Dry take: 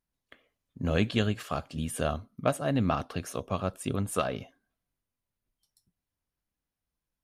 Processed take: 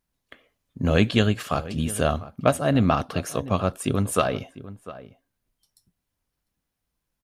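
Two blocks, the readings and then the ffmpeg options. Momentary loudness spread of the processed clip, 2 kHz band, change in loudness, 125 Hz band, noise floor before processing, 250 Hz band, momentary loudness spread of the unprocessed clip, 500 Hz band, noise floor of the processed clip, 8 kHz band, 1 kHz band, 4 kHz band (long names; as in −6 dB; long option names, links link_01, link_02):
17 LU, +7.0 dB, +7.0 dB, +7.0 dB, below −85 dBFS, +7.0 dB, 8 LU, +7.0 dB, −81 dBFS, +7.0 dB, +7.0 dB, +7.0 dB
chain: -filter_complex "[0:a]asplit=2[link_01][link_02];[link_02]adelay=699.7,volume=-16dB,highshelf=frequency=4000:gain=-15.7[link_03];[link_01][link_03]amix=inputs=2:normalize=0,volume=7dB"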